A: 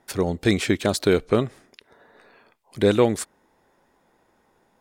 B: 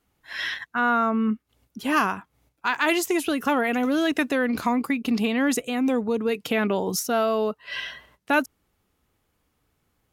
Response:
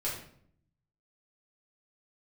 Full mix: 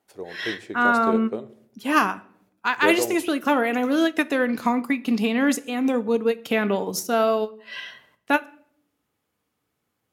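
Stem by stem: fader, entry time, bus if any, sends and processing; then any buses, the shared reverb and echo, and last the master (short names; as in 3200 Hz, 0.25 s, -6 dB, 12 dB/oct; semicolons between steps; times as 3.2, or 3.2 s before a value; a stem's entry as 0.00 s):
-15.0 dB, 0.00 s, send -14 dB, band shelf 550 Hz +8.5 dB
+2.0 dB, 0.00 s, send -14 dB, ending taper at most 420 dB/s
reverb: on, RT60 0.60 s, pre-delay 4 ms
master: HPF 130 Hz 12 dB/oct; upward expander 1.5:1, over -29 dBFS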